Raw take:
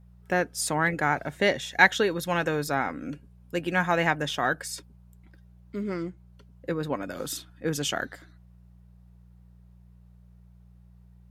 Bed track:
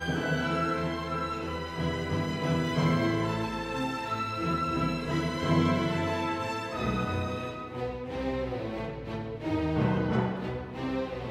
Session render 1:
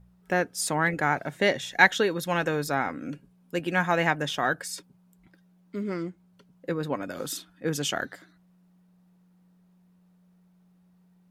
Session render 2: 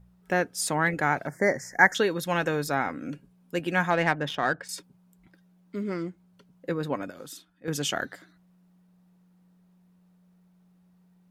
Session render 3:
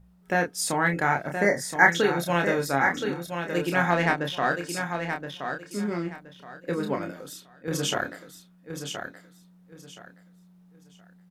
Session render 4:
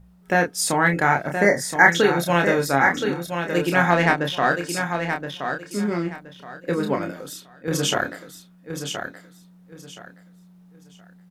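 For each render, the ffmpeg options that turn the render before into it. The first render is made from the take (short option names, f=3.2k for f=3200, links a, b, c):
-af "bandreject=f=60:t=h:w=4,bandreject=f=120:t=h:w=4"
-filter_complex "[0:a]asettb=1/sr,asplit=3[a][b][c];[a]atrim=end=1.274[d];[b]atrim=start=1.27:end=1.95,asetpts=PTS-STARTPTS,afade=t=in:d=0.004:c=qsin,afade=t=out:st=0.676:d=0.004:c=qsin,asuperstop=centerf=3200:order=12:qfactor=1.2[e];[c]atrim=start=1.946[f];[d][e]acrossfade=d=0.004:c1=hsin:c2=qsin[g];[g][f]acrossfade=d=0.004:c1=qsin:c2=hsin,asettb=1/sr,asplit=3[h][i][j];[h]atrim=end=3.904[k];[i]atrim=start=3.9:end=4.69,asetpts=PTS-STARTPTS,afade=t=in:d=0.004:c=qsin,afade=t=out:st=0.786:d=0.004:c=qsin,adynamicsmooth=sensitivity=2.5:basefreq=2.9k[l];[j]atrim=start=4.686[m];[k][l]acrossfade=d=0.004:c1=hsin:c2=qsin[n];[n][m]acrossfade=d=0.004:c1=qsin:c2=hsin,asplit=3[o][p][q];[o]atrim=end=7.1,asetpts=PTS-STARTPTS,afade=t=out:st=6.97:d=0.13:c=log:silence=0.354813[r];[p]atrim=start=7.1:end=7.68,asetpts=PTS-STARTPTS,volume=-9dB[s];[q]atrim=start=7.68,asetpts=PTS-STARTPTS,afade=t=in:d=0.13:c=log:silence=0.354813[t];[r][s][t]concat=n=3:v=0:a=1"
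-filter_complex "[0:a]asplit=2[a][b];[b]adelay=29,volume=-5dB[c];[a][c]amix=inputs=2:normalize=0,asplit=2[d][e];[e]aecho=0:1:1022|2044|3066:0.447|0.112|0.0279[f];[d][f]amix=inputs=2:normalize=0"
-af "volume=5dB,alimiter=limit=-2dB:level=0:latency=1"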